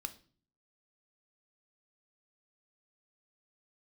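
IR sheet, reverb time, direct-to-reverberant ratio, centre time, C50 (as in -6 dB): 0.45 s, 9.0 dB, 5 ms, 16.0 dB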